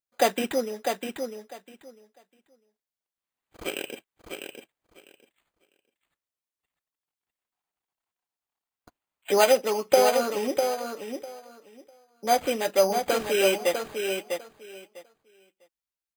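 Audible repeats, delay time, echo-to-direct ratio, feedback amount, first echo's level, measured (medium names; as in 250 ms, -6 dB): 2, 650 ms, -6.0 dB, 17%, -6.0 dB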